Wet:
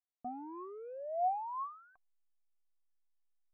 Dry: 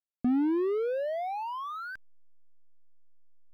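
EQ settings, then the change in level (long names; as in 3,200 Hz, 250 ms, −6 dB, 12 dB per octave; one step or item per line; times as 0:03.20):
formant resonators in series a
+4.5 dB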